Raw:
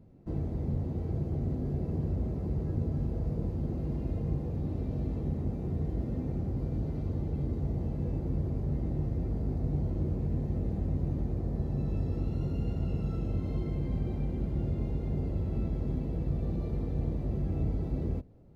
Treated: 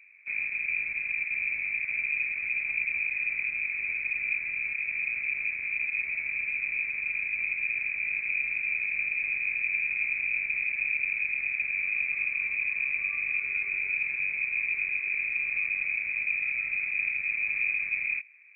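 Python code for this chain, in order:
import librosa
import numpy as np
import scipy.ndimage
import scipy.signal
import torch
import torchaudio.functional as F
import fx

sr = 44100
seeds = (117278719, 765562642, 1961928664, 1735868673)

y = fx.rattle_buzz(x, sr, strikes_db=-34.0, level_db=-42.0)
y = fx.freq_invert(y, sr, carrier_hz=2500)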